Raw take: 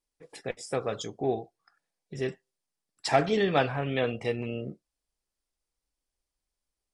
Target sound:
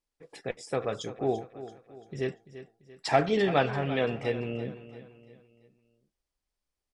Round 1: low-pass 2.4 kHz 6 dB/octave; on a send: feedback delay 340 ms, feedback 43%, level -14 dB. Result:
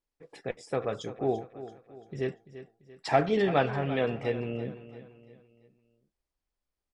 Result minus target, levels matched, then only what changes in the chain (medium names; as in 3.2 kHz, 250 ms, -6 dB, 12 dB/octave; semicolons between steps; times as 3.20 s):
4 kHz band -3.0 dB
change: low-pass 5.3 kHz 6 dB/octave